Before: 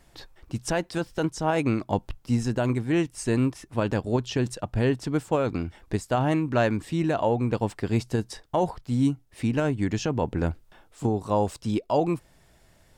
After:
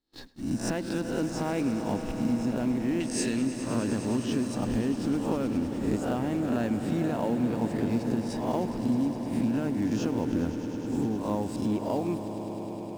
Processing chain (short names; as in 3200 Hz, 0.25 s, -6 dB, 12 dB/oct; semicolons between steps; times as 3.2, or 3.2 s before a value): spectral swells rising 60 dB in 0.56 s; gate -42 dBFS, range -29 dB; in parallel at -6.5 dB: companded quantiser 4-bit; on the sum: bell 250 Hz +13 dB 0.79 oct; compressor, threshold -19 dBFS, peak gain reduction 13.5 dB; 3–3.42 weighting filter D; on a send: swelling echo 0.103 s, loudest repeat 5, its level -14 dB; on the sum: gain -7 dB